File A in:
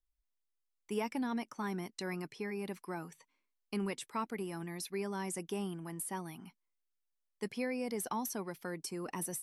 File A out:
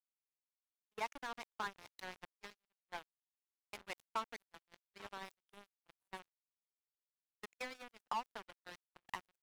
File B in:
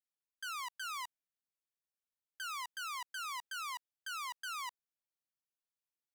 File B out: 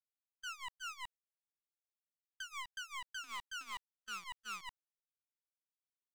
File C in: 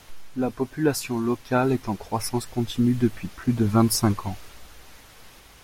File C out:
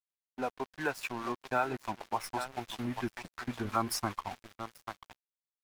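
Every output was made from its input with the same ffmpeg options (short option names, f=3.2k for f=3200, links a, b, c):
-filter_complex "[0:a]acrossover=split=590 3200:gain=0.141 1 0.251[a][b][c];[a][b][c]amix=inputs=3:normalize=0,asplit=2[d][e];[e]aecho=0:1:839:0.224[f];[d][f]amix=inputs=2:normalize=0,acrossover=split=420[g][h];[g]aeval=exprs='val(0)*(1-0.5/2+0.5/2*cos(2*PI*5.2*n/s))':c=same[i];[h]aeval=exprs='val(0)*(1-0.5/2-0.5/2*cos(2*PI*5.2*n/s))':c=same[j];[i][j]amix=inputs=2:normalize=0,asplit=2[k][l];[l]asoftclip=type=tanh:threshold=-33dB,volume=-5.5dB[m];[k][m]amix=inputs=2:normalize=0,adynamicequalizer=threshold=0.00126:dfrequency=460:dqfactor=6.2:tfrequency=460:tqfactor=6.2:attack=5:release=100:ratio=0.375:range=2:mode=cutabove:tftype=bell,aeval=exprs='sgn(val(0))*max(abs(val(0))-0.00794,0)':c=same,agate=range=-28dB:threshold=-58dB:ratio=16:detection=peak,acompressor=threshold=-41dB:ratio=1.5,volume=4.5dB"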